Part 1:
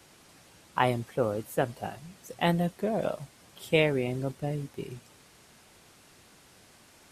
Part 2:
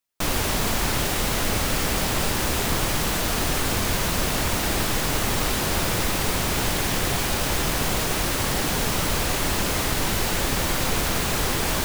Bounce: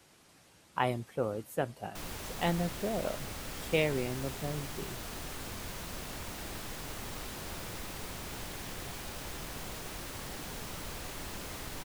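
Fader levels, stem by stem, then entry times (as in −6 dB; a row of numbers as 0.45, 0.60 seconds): −5.0, −18.0 decibels; 0.00, 1.75 seconds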